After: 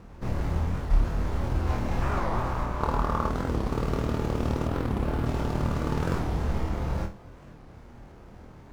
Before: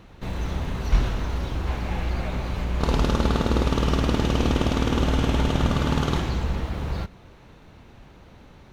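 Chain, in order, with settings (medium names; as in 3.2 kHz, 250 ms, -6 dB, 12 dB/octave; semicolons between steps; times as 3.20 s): median filter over 15 samples; 2.02–3.28 s: peaking EQ 1.1 kHz +11 dB 1.1 oct; flutter echo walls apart 4.3 m, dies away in 0.3 s; gain riding within 4 dB 0.5 s; 4.67–5.26 s: peaking EQ 6.2 kHz -7.5 dB 0.96 oct; warped record 45 rpm, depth 250 cents; trim -4.5 dB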